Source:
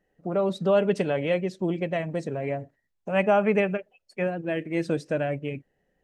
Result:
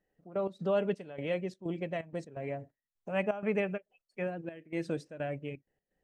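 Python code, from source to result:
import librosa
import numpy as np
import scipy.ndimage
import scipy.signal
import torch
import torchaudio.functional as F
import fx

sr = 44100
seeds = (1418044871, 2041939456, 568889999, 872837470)

y = fx.step_gate(x, sr, bpm=127, pattern='xx.x.xxx..xxx.x', floor_db=-12.0, edge_ms=4.5)
y = F.gain(torch.from_numpy(y), -8.0).numpy()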